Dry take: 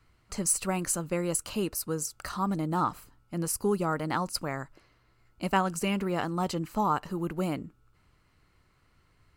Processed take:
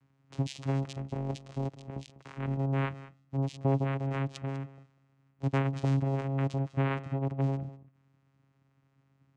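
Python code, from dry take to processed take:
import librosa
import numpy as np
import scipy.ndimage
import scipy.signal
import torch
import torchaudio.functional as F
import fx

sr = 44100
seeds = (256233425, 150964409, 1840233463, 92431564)

y = fx.cycle_switch(x, sr, every=2, mode='muted', at=(0.81, 2.56), fade=0.02)
y = fx.vocoder(y, sr, bands=4, carrier='saw', carrier_hz=136.0)
y = y + 10.0 ** (-17.0 / 20.0) * np.pad(y, (int(197 * sr / 1000.0), 0))[:len(y)]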